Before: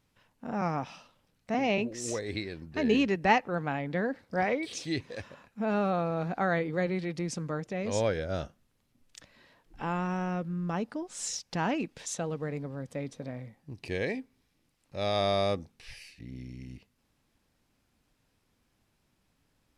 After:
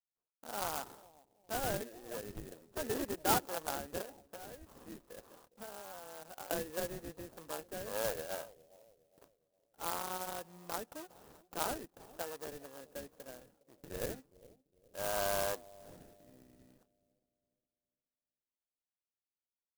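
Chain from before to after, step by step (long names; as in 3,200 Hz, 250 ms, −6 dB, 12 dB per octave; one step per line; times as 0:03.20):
noise gate −55 dBFS, range −27 dB
low-pass filter 2,800 Hz 24 dB per octave
de-essing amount 95%
high-pass filter 590 Hz 12 dB per octave
0:04.01–0:06.51: downward compressor 5 to 1, threshold −43 dBFS, peak gain reduction 15.5 dB
decimation without filtering 20×
bucket-brigade delay 410 ms, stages 2,048, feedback 38%, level −20 dB
converter with an unsteady clock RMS 0.089 ms
level −3.5 dB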